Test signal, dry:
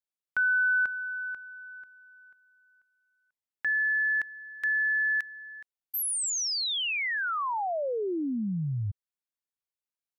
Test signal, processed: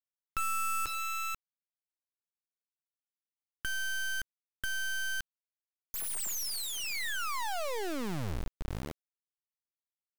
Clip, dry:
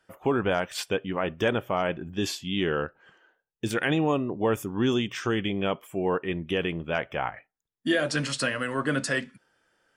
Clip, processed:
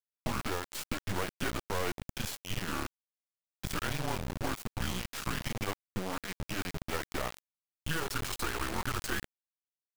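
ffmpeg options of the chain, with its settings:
-filter_complex "[0:a]acrossover=split=210|890|2000|6100[s0][s1][s2][s3][s4];[s0]acompressor=threshold=0.0126:ratio=8[s5];[s1]acompressor=threshold=0.0224:ratio=5[s6];[s2]acompressor=threshold=0.0282:ratio=6[s7];[s3]acompressor=threshold=0.00891:ratio=5[s8];[s4]acompressor=threshold=0.00891:ratio=2[s9];[s5][s6][s7][s8][s9]amix=inputs=5:normalize=0,afreqshift=-180,acrusher=bits=3:dc=4:mix=0:aa=0.000001"

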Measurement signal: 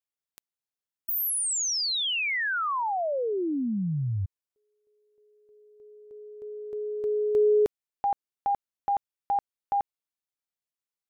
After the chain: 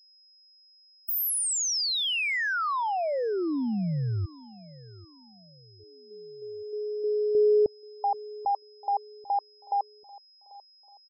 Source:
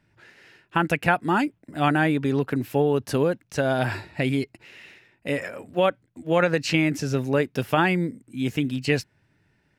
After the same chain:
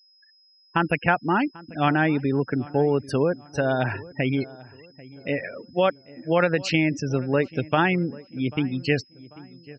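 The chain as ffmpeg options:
-filter_complex "[0:a]afftfilt=real='re*gte(hypot(re,im),0.0282)':imag='im*gte(hypot(re,im),0.0282)':win_size=1024:overlap=0.75,asplit=2[s0][s1];[s1]adelay=791,lowpass=f=1600:p=1,volume=0.1,asplit=2[s2][s3];[s3]adelay=791,lowpass=f=1600:p=1,volume=0.42,asplit=2[s4][s5];[s5]adelay=791,lowpass=f=1600:p=1,volume=0.42[s6];[s0][s2][s4][s6]amix=inputs=4:normalize=0,aeval=exprs='val(0)+0.00158*sin(2*PI*5100*n/s)':c=same"

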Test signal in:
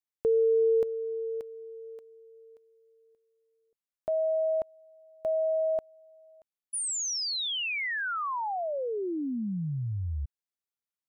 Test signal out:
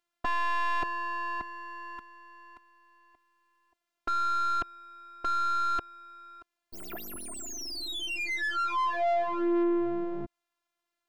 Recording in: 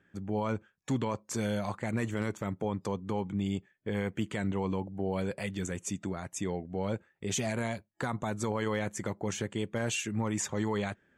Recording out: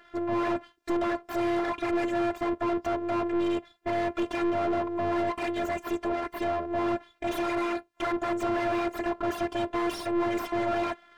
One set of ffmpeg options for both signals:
-filter_complex "[0:a]aeval=exprs='abs(val(0))':c=same,afftfilt=real='hypot(re,im)*cos(PI*b)':imag='0':win_size=512:overlap=0.75,asplit=2[s0][s1];[s1]highpass=f=720:p=1,volume=44.7,asoftclip=type=tanh:threshold=0.141[s2];[s0][s2]amix=inputs=2:normalize=0,lowpass=f=1000:p=1,volume=0.501"

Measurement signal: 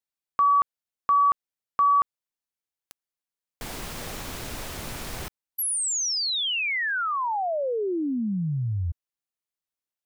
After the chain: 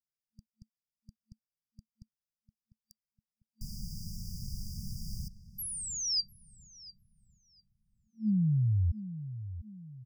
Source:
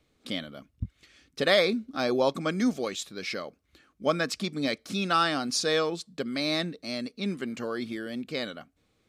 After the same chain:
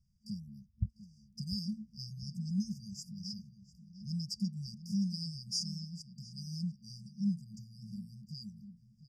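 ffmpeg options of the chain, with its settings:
-filter_complex "[0:a]highshelf=f=5500:t=q:w=1.5:g=-10,asplit=2[s0][s1];[s1]adelay=699,lowpass=f=2400:p=1,volume=0.224,asplit=2[s2][s3];[s3]adelay=699,lowpass=f=2400:p=1,volume=0.42,asplit=2[s4][s5];[s5]adelay=699,lowpass=f=2400:p=1,volume=0.42,asplit=2[s6][s7];[s7]adelay=699,lowpass=f=2400:p=1,volume=0.42[s8];[s0][s2][s4][s6][s8]amix=inputs=5:normalize=0,afftfilt=real='re*(1-between(b*sr/4096,220,4700))':imag='im*(1-between(b*sr/4096,220,4700))':win_size=4096:overlap=0.75"

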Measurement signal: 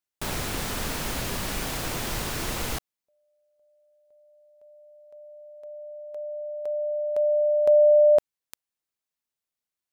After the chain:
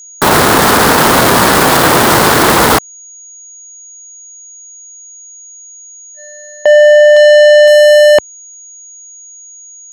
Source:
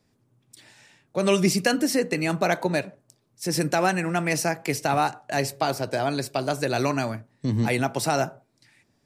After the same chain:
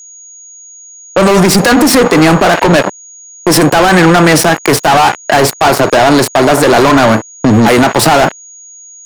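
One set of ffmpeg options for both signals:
-filter_complex "[0:a]asplit=2[s0][s1];[s1]adynamicsmooth=sensitivity=1:basefreq=1700,volume=1.33[s2];[s0][s2]amix=inputs=2:normalize=0,equalizer=f=630:t=o:w=0.67:g=-4,equalizer=f=2500:t=o:w=0.67:g=-10,equalizer=f=6300:t=o:w=0.67:g=-6,aeval=exprs='sgn(val(0))*max(abs(val(0))-0.0237,0)':c=same,agate=range=0.00224:threshold=0.0141:ratio=16:release=363:detection=peak,highpass=61,asplit=2[s3][s4];[s4]highpass=f=720:p=1,volume=39.8,asoftclip=type=tanh:threshold=0.596[s5];[s3][s5]amix=inputs=2:normalize=0,lowpass=f=6300:p=1,volume=0.501,acompressor=threshold=0.2:ratio=6:release=192:knee=6,aeval=exprs='val(0)+0.00708*sin(2*PI*6700*n/s)':c=same,alimiter=level_in=4.22:limit=0.891:release=50:level=0:latency=1,volume=0.891"

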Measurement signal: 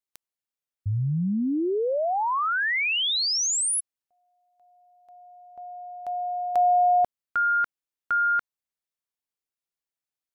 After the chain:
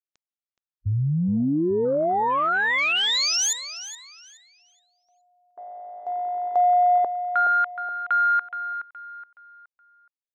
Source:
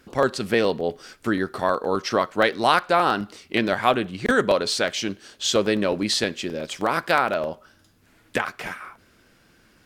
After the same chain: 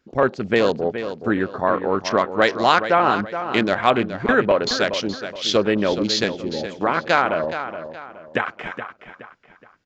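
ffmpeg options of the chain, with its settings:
-filter_complex "[0:a]aresample=16000,aresample=44100,afwtdn=0.0251,asplit=2[s0][s1];[s1]adelay=421,lowpass=f=4700:p=1,volume=0.316,asplit=2[s2][s3];[s3]adelay=421,lowpass=f=4700:p=1,volume=0.36,asplit=2[s4][s5];[s5]adelay=421,lowpass=f=4700:p=1,volume=0.36,asplit=2[s6][s7];[s7]adelay=421,lowpass=f=4700:p=1,volume=0.36[s8];[s0][s2][s4][s6][s8]amix=inputs=5:normalize=0,volume=1.33"

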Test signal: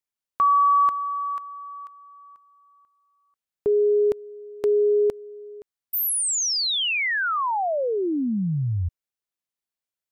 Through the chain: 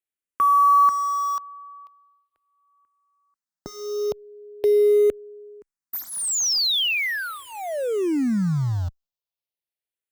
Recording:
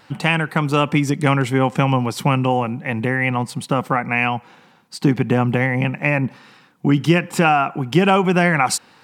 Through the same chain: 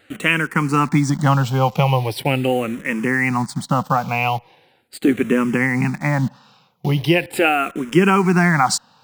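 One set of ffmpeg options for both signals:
-filter_complex "[0:a]asplit=2[s0][s1];[s1]acrusher=bits=4:mix=0:aa=0.000001,volume=0.596[s2];[s0][s2]amix=inputs=2:normalize=0,asplit=2[s3][s4];[s4]afreqshift=-0.4[s5];[s3][s5]amix=inputs=2:normalize=1,volume=0.891"

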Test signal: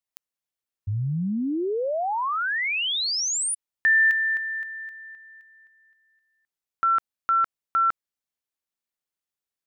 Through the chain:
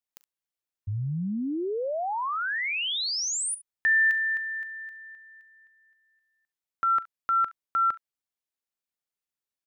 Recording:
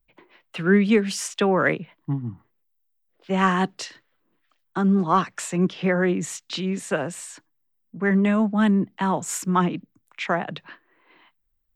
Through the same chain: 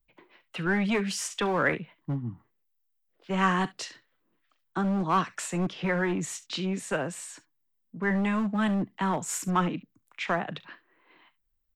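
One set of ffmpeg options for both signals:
-filter_complex "[0:a]acrossover=split=990[s0][s1];[s0]asoftclip=type=hard:threshold=0.0891[s2];[s1]aecho=1:1:40|69:0.15|0.133[s3];[s2][s3]amix=inputs=2:normalize=0,volume=0.668"

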